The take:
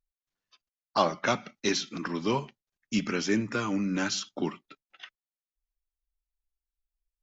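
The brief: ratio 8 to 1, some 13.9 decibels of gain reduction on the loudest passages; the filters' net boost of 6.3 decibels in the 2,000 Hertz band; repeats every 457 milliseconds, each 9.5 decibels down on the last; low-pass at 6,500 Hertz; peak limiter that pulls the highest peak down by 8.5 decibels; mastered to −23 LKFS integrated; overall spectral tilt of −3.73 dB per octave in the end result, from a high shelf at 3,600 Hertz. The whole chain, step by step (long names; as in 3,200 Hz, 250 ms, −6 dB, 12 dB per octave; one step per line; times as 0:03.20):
low-pass filter 6,500 Hz
parametric band 2,000 Hz +7.5 dB
high-shelf EQ 3,600 Hz +3 dB
downward compressor 8 to 1, threshold −33 dBFS
brickwall limiter −27.5 dBFS
repeating echo 457 ms, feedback 33%, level −9.5 dB
level +16.5 dB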